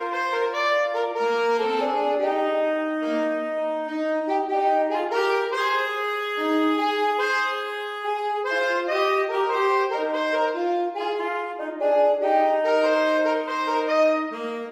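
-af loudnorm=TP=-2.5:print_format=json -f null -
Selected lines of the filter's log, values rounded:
"input_i" : "-22.9",
"input_tp" : "-9.3",
"input_lra" : "2.4",
"input_thresh" : "-32.9",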